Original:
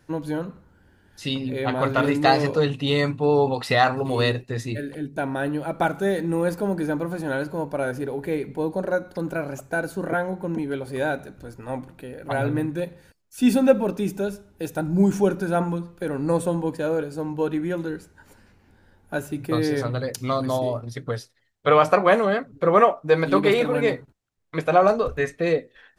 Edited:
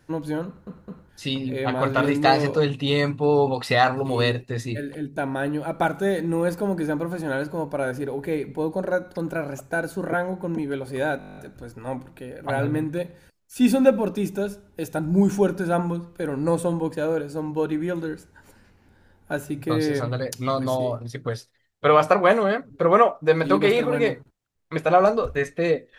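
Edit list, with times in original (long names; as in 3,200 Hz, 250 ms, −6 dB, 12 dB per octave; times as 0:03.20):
0:00.46: stutter in place 0.21 s, 3 plays
0:11.19: stutter 0.02 s, 10 plays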